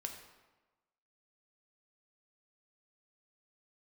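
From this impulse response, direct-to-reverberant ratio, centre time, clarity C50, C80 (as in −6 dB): 3.0 dB, 26 ms, 6.5 dB, 8.5 dB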